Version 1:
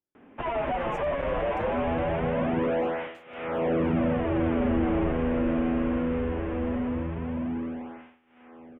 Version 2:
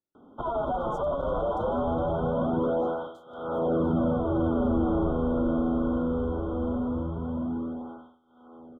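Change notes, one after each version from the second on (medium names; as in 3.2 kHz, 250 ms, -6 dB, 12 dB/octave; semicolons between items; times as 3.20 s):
master: add brick-wall FIR band-stop 1.5–3.1 kHz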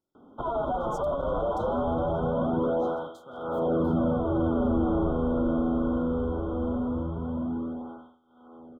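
speech +9.5 dB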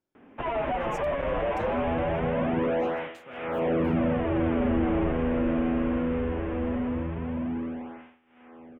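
master: remove brick-wall FIR band-stop 1.5–3.1 kHz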